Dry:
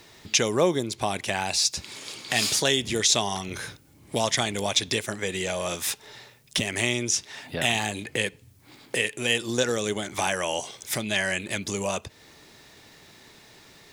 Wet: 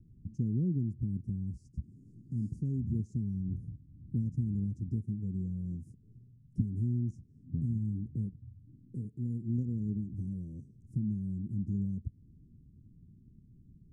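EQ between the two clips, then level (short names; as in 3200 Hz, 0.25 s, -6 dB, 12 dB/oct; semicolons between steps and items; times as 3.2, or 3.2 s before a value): inverse Chebyshev band-stop 670–3800 Hz, stop band 60 dB; tape spacing loss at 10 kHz 43 dB; low shelf 140 Hz +8.5 dB; 0.0 dB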